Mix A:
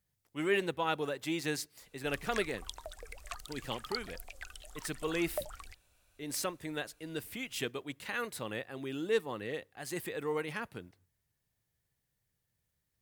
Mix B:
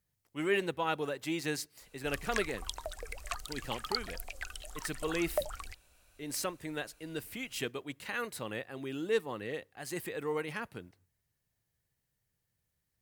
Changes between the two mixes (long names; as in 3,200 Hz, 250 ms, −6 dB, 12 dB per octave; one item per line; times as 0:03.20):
background +5.0 dB
master: add notch filter 3,500 Hz, Q 23